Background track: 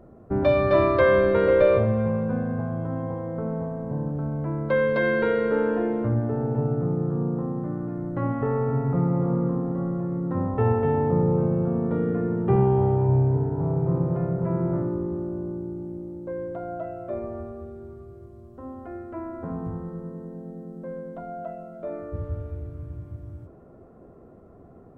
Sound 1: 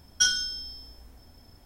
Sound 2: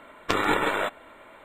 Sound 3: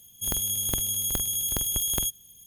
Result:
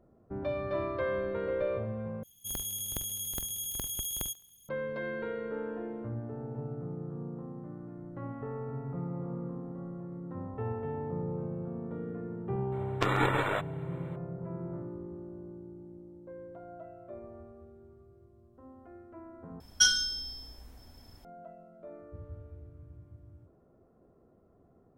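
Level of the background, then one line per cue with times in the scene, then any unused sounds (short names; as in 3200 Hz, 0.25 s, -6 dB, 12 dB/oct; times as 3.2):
background track -14 dB
2.23 replace with 3 -8.5 dB + thinning echo 70 ms, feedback 51%, level -20 dB
12.72 add 2 -4 dB + high shelf 3000 Hz -5.5 dB
19.6 replace with 1 -0.5 dB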